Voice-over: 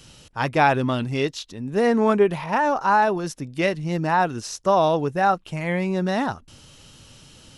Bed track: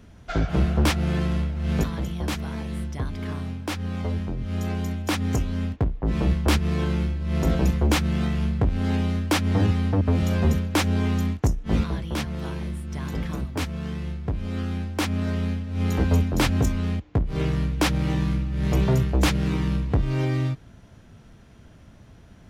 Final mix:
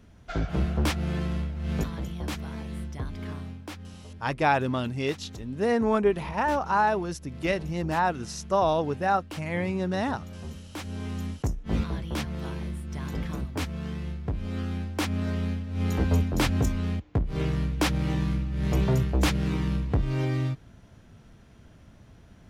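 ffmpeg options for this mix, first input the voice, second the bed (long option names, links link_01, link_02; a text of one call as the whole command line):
ffmpeg -i stem1.wav -i stem2.wav -filter_complex "[0:a]adelay=3850,volume=-5dB[link_01];[1:a]volume=10.5dB,afade=type=out:start_time=3.28:duration=0.73:silence=0.211349,afade=type=in:start_time=10.67:duration=1.36:silence=0.16788[link_02];[link_01][link_02]amix=inputs=2:normalize=0" out.wav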